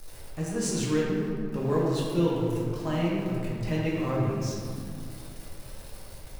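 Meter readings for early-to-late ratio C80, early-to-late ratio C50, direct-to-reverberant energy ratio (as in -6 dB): 0.5 dB, -1.0 dB, -6.0 dB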